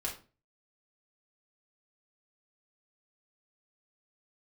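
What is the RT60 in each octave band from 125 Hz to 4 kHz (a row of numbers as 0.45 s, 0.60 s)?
0.50 s, 0.40 s, 0.40 s, 0.30 s, 0.30 s, 0.25 s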